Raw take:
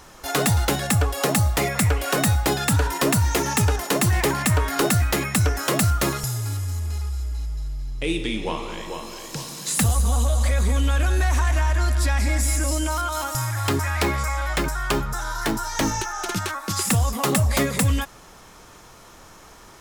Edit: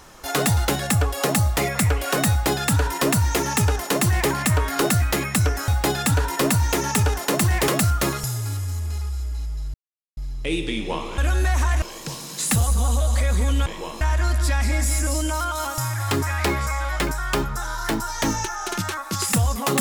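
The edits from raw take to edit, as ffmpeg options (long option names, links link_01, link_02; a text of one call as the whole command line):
ffmpeg -i in.wav -filter_complex "[0:a]asplit=8[link_01][link_02][link_03][link_04][link_05][link_06][link_07][link_08];[link_01]atrim=end=5.682[link_09];[link_02]atrim=start=2.298:end=4.302[link_10];[link_03]atrim=start=5.678:end=7.74,asetpts=PTS-STARTPTS,afade=type=out:start_time=2.058:duration=0.004:curve=hsin,apad=pad_dur=0.43[link_11];[link_04]atrim=start=7.74:end=8.752,asetpts=PTS-STARTPTS,afade=type=in:duration=0.004:curve=hsin[link_12];[link_05]atrim=start=10.938:end=11.582[link_13];[link_06]atrim=start=9.098:end=10.942[link_14];[link_07]atrim=start=8.748:end=9.102[link_15];[link_08]atrim=start=11.578[link_16];[link_09][link_10]acrossfade=duration=0.004:curve1=hsin:curve2=hsin[link_17];[link_11][link_12]concat=n=2:v=0:a=1[link_18];[link_17][link_18]acrossfade=duration=0.004:curve1=hsin:curve2=hsin[link_19];[link_19][link_13]acrossfade=duration=0.004:curve1=hsin:curve2=hsin[link_20];[link_20][link_14]acrossfade=duration=0.004:curve1=hsin:curve2=hsin[link_21];[link_21][link_15]acrossfade=duration=0.004:curve1=hsin:curve2=hsin[link_22];[link_22][link_16]acrossfade=duration=0.004:curve1=hsin:curve2=hsin" out.wav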